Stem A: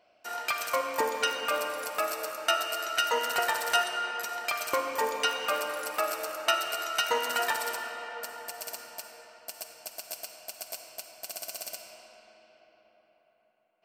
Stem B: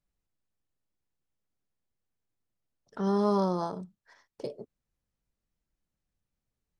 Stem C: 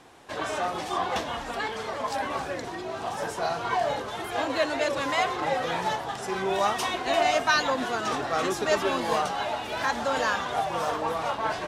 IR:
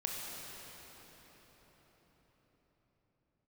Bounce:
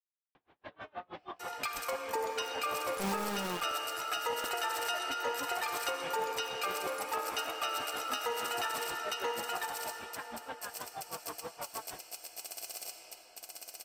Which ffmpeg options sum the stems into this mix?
-filter_complex "[0:a]aecho=1:1:2.4:0.56,adelay=1150,volume=-6dB,asplit=2[link_01][link_02];[link_02]volume=-3.5dB[link_03];[1:a]acrossover=split=260[link_04][link_05];[link_05]acompressor=threshold=-40dB:ratio=2.5[link_06];[link_04][link_06]amix=inputs=2:normalize=0,acrusher=bits=4:mix=0:aa=0.000001,volume=-5.5dB,asplit=2[link_07][link_08];[2:a]lowpass=frequency=3400:width=0.5412,lowpass=frequency=3400:width=1.3066,alimiter=limit=-21.5dB:level=0:latency=1,aeval=exprs='val(0)*pow(10,-33*(0.5-0.5*cos(2*PI*6.3*n/s))/20)':channel_layout=same,adelay=350,volume=-9dB[link_09];[link_08]apad=whole_len=530156[link_10];[link_09][link_10]sidechaincompress=threshold=-54dB:ratio=8:attack=16:release=441[link_11];[link_03]aecho=0:1:982:1[link_12];[link_01][link_07][link_11][link_12]amix=inputs=4:normalize=0,alimiter=limit=-23.5dB:level=0:latency=1:release=121"

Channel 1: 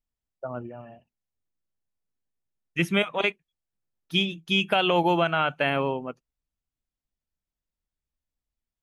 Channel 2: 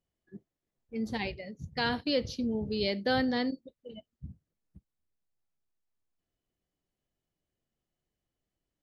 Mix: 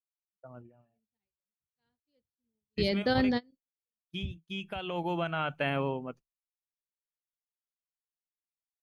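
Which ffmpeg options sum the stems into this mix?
ffmpeg -i stem1.wav -i stem2.wav -filter_complex "[0:a]volume=-7dB,afade=type=in:start_time=4.82:duration=0.79:silence=0.334965,asplit=2[link_01][link_02];[1:a]volume=-0.5dB[link_03];[link_02]apad=whole_len=389372[link_04];[link_03][link_04]sidechaingate=range=-33dB:threshold=-50dB:ratio=16:detection=peak[link_05];[link_01][link_05]amix=inputs=2:normalize=0,agate=range=-33dB:threshold=-49dB:ratio=3:detection=peak,lowshelf=frequency=210:gain=8" out.wav

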